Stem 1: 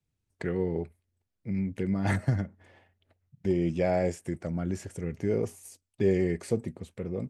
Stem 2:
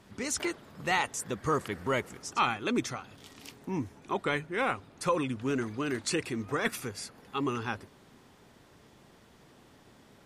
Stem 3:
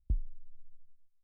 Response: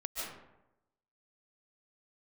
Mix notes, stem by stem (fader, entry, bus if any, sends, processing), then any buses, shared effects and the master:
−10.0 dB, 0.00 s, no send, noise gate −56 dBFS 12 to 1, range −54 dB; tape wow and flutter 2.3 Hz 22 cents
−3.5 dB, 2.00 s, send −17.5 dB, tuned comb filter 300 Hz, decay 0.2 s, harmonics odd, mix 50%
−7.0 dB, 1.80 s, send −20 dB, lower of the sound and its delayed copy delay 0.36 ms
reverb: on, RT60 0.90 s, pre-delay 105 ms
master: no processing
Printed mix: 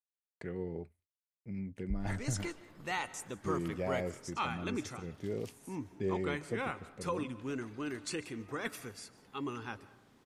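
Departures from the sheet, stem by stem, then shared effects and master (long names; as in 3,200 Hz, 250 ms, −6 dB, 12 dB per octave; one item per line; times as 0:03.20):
stem 2: send −17.5 dB → −23.5 dB
reverb return +6.5 dB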